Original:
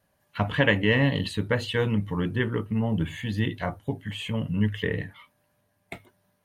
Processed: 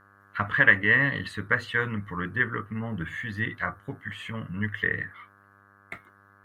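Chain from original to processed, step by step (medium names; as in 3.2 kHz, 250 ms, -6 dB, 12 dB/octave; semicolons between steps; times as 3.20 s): mains buzz 100 Hz, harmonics 17, -56 dBFS -4 dB/octave; high-order bell 1.5 kHz +14.5 dB 1.1 oct; trim -7 dB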